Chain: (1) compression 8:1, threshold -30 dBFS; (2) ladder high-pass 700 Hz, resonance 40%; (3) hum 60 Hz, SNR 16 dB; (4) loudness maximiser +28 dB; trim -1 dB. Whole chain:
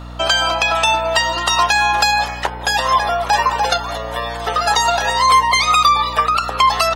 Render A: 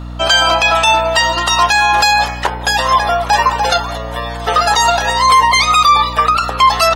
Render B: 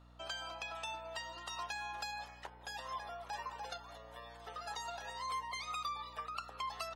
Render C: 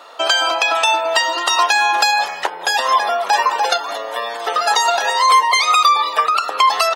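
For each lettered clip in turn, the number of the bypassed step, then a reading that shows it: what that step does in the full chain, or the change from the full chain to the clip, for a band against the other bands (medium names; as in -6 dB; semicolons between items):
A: 1, mean gain reduction 4.0 dB; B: 4, crest factor change +5.5 dB; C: 3, 250 Hz band -6.5 dB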